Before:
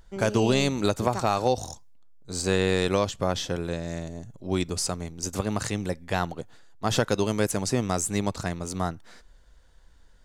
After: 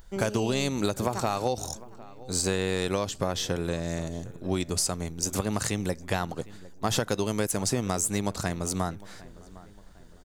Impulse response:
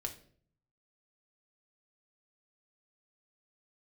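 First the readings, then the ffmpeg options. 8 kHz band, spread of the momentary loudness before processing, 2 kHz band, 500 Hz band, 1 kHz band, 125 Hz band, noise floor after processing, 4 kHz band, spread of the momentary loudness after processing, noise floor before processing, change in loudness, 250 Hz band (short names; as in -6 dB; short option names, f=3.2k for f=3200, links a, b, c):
+2.5 dB, 11 LU, -2.5 dB, -3.0 dB, -3.0 dB, -2.0 dB, -49 dBFS, -1.0 dB, 11 LU, -54 dBFS, -2.0 dB, -2.0 dB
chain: -filter_complex "[0:a]highshelf=f=10k:g=11,acompressor=threshold=-26dB:ratio=4,asplit=2[a][b];[b]adelay=756,lowpass=f=2.3k:p=1,volume=-19.5dB,asplit=2[c][d];[d]adelay=756,lowpass=f=2.3k:p=1,volume=0.46,asplit=2[e][f];[f]adelay=756,lowpass=f=2.3k:p=1,volume=0.46,asplit=2[g][h];[h]adelay=756,lowpass=f=2.3k:p=1,volume=0.46[i];[a][c][e][g][i]amix=inputs=5:normalize=0,volume=2.5dB"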